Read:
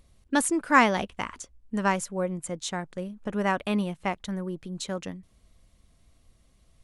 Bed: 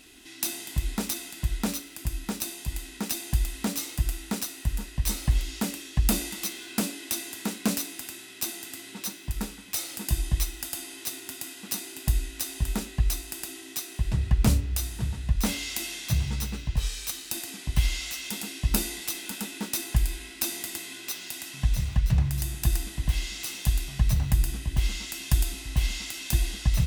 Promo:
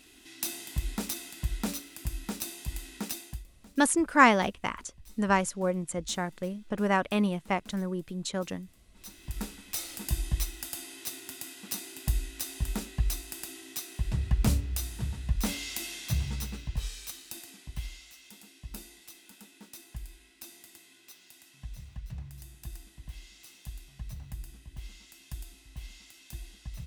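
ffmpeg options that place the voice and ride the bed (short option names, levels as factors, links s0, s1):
-filter_complex "[0:a]adelay=3450,volume=1[s0];[1:a]volume=8.41,afade=t=out:st=3.03:d=0.42:silence=0.0749894,afade=t=in:st=8.93:d=0.49:silence=0.0749894,afade=t=out:st=16.23:d=1.83:silence=0.199526[s1];[s0][s1]amix=inputs=2:normalize=0"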